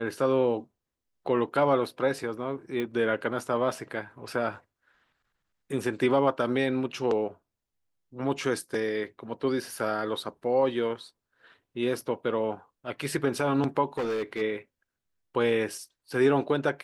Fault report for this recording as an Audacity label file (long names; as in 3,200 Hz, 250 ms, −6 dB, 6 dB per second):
2.800000	2.800000	click −20 dBFS
13.970000	14.420000	clipping −26 dBFS